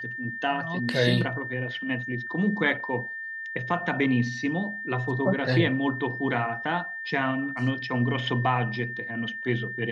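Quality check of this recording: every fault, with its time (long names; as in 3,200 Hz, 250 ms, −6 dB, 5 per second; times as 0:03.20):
whistle 1,800 Hz −33 dBFS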